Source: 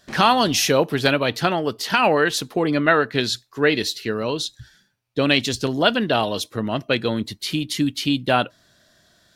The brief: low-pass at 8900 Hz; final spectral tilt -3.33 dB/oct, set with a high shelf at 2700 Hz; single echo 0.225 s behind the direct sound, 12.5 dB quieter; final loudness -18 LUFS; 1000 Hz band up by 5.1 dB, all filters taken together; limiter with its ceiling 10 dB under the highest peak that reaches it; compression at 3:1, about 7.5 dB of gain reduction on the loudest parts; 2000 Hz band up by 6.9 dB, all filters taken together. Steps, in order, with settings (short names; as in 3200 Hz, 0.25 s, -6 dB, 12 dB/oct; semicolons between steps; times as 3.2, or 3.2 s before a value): LPF 8900 Hz; bell 1000 Hz +4.5 dB; bell 2000 Hz +6 dB; high shelf 2700 Hz +4 dB; compressor 3:1, threshold -17 dBFS; limiter -11.5 dBFS; echo 0.225 s -12.5 dB; gain +5 dB